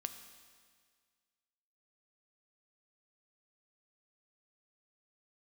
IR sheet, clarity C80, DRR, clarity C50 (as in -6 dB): 10.5 dB, 7.5 dB, 9.5 dB